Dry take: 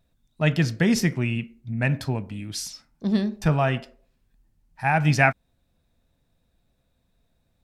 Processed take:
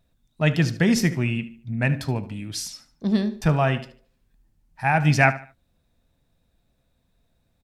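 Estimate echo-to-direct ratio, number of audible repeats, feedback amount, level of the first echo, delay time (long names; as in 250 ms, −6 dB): −15.5 dB, 2, 31%, −16.0 dB, 74 ms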